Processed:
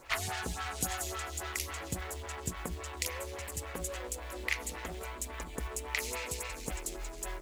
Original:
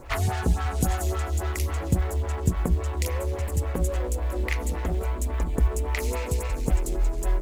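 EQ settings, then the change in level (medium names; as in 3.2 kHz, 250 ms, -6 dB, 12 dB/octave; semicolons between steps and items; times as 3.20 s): tilt shelf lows -8 dB, about 1.4 kHz; bass shelf 160 Hz -8.5 dB; treble shelf 6.2 kHz -7.5 dB; -3.5 dB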